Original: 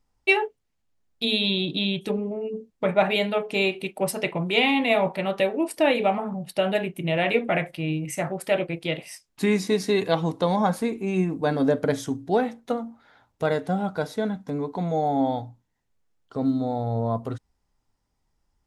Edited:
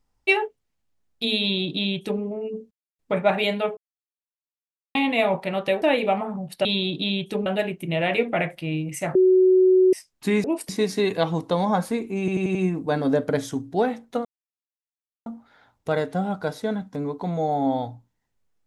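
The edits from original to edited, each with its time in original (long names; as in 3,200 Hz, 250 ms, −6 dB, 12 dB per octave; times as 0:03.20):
0:01.40–0:02.21: duplicate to 0:06.62
0:02.71: splice in silence 0.28 s
0:03.49–0:04.67: silence
0:05.54–0:05.79: move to 0:09.60
0:08.31–0:09.09: beep over 372 Hz −12.5 dBFS
0:11.10: stutter 0.09 s, 5 plays
0:12.80: splice in silence 1.01 s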